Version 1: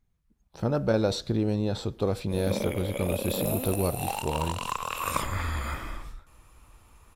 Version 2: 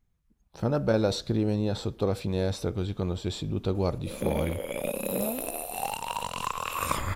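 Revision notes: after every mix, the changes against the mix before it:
background: entry +1.75 s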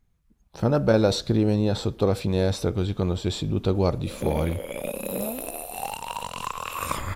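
speech +5.0 dB

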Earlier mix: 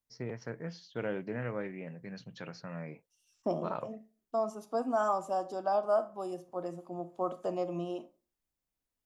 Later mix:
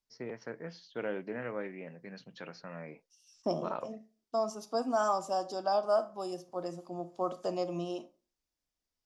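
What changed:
first voice: add band-pass filter 220–5,900 Hz
second voice: add parametric band 5,100 Hz +12 dB 1 octave

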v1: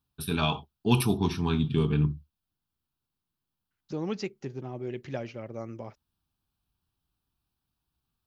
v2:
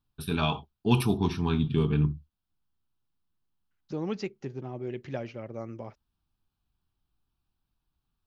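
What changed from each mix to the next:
first voice: remove high-pass filter 49 Hz
master: add high-shelf EQ 5,500 Hz −7 dB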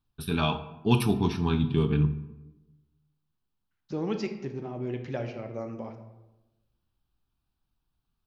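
reverb: on, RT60 1.0 s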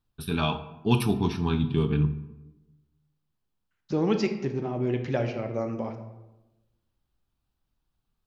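second voice +6.0 dB

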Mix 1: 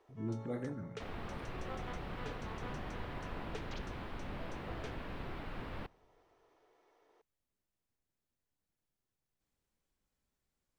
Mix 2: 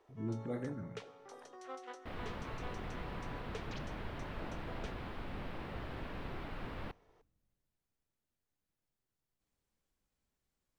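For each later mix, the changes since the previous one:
second sound: entry +1.05 s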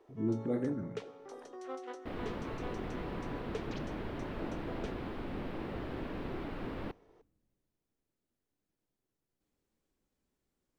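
master: add parametric band 320 Hz +9 dB 1.6 octaves

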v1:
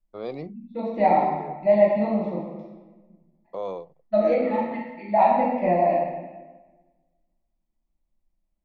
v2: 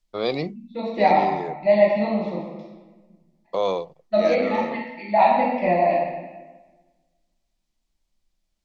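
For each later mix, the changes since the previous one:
first voice +7.5 dB
master: add parametric band 4,500 Hz +12.5 dB 2.3 octaves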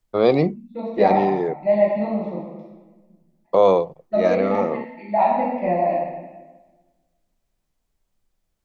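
first voice +9.5 dB
master: add parametric band 4,500 Hz −12.5 dB 2.3 octaves

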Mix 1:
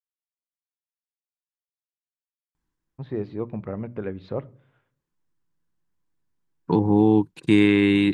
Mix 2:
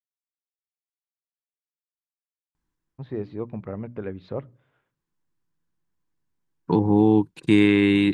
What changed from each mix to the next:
first voice: send −9.0 dB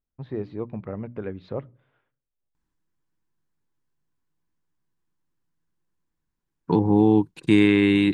first voice: entry −2.80 s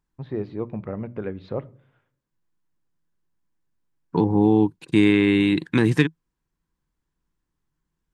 first voice: send +10.5 dB
second voice: entry −2.55 s

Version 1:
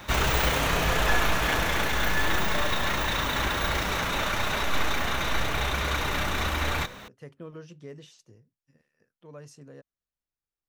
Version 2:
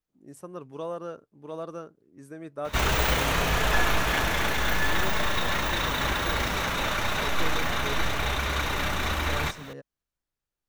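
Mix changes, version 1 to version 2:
first voice +6.5 dB
second voice +5.0 dB
background: entry +2.65 s

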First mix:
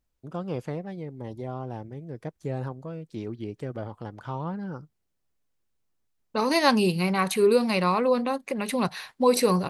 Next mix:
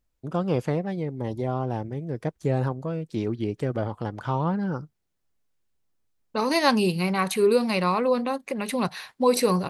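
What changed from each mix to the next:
first voice +7.0 dB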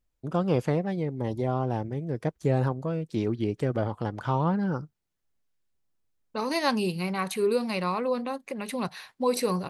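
second voice −5.0 dB

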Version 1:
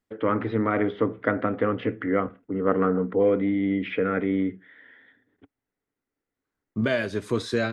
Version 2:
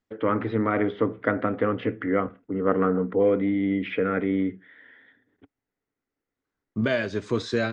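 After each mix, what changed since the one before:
master: add Butterworth low-pass 7,500 Hz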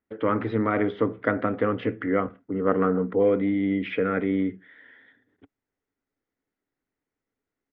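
second voice: entry +2.05 s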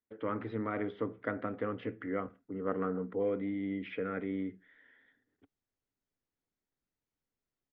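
first voice −11.5 dB

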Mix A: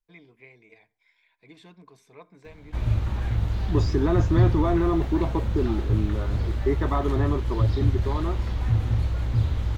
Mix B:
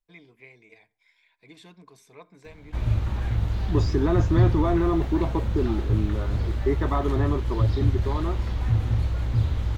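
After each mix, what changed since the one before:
first voice: add high-shelf EQ 4,800 Hz +8.5 dB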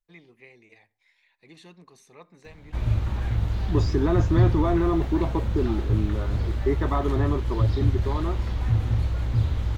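first voice: remove EQ curve with evenly spaced ripples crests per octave 1.7, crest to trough 8 dB

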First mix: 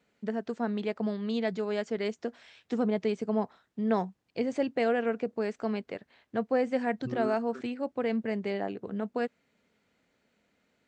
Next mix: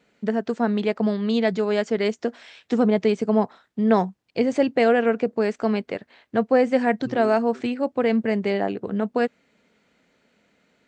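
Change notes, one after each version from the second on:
first voice +9.0 dB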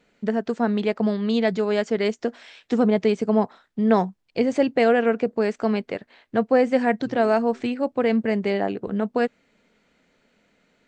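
second voice −6.0 dB
master: remove high-pass filter 63 Hz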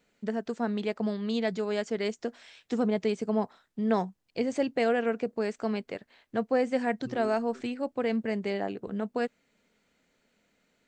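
first voice −8.0 dB
master: add high-shelf EQ 7,100 Hz +12 dB

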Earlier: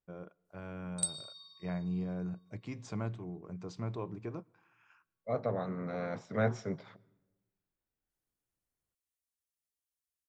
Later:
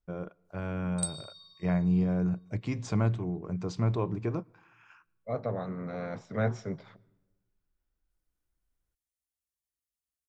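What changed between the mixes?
first voice +8.0 dB
master: add low-shelf EQ 74 Hz +11 dB

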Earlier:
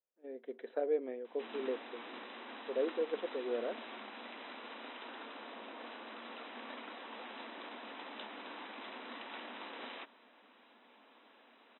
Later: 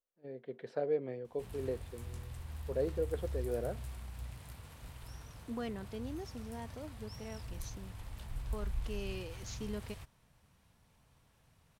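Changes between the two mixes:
second voice: unmuted
background −11.0 dB
master: remove linear-phase brick-wall band-pass 220–4,000 Hz

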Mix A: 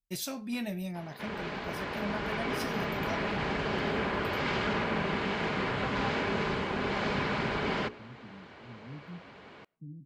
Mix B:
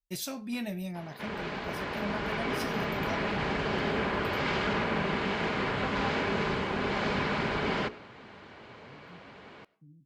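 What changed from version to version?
second voice −10.5 dB
background: send +10.5 dB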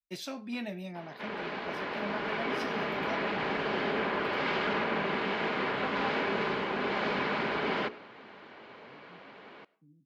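master: add three-way crossover with the lows and the highs turned down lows −16 dB, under 190 Hz, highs −16 dB, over 5,100 Hz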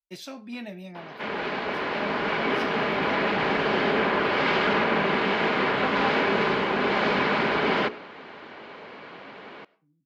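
second voice −7.5 dB
background +7.5 dB

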